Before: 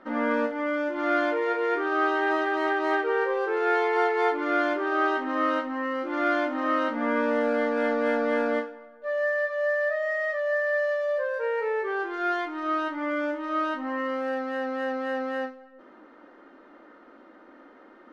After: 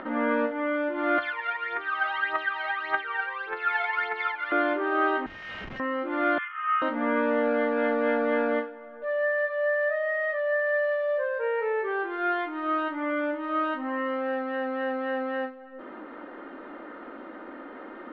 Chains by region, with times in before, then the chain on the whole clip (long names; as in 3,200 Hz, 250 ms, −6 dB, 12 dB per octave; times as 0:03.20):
0:01.18–0:04.52: high-pass filter 1,300 Hz + phase shifter 1.7 Hz, delay 1.5 ms, feedback 70%
0:05.26–0:05.80: Butterworth high-pass 2,000 Hz + comparator with hysteresis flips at −47.5 dBFS + double-tracking delay 45 ms −7.5 dB
0:06.38–0:06.82: Chebyshev band-pass filter 1,100–3,300 Hz, order 5 + comb filter 2.4 ms, depth 54%
whole clip: upward compression, threshold −31 dBFS; low-pass filter 3,500 Hz 24 dB per octave